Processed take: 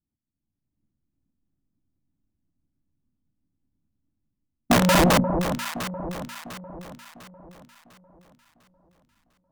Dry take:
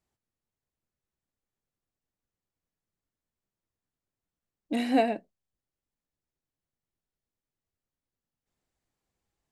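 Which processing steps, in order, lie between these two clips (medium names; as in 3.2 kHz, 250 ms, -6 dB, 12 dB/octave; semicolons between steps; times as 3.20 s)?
pitch bend over the whole clip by -9 st starting unshifted; reverse; compression 4:1, threshold -34 dBFS, peak gain reduction 12.5 dB; reverse; resonant low shelf 350 Hz +7 dB, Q 3; waveshaping leveller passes 5; tilt shelf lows +9 dB; hum notches 60/120/180/240 Hz; level rider gain up to 15.5 dB; integer overflow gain 6 dB; on a send: echo whose repeats swap between lows and highs 350 ms, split 1 kHz, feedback 64%, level -6 dB; on the sum: trim -7 dB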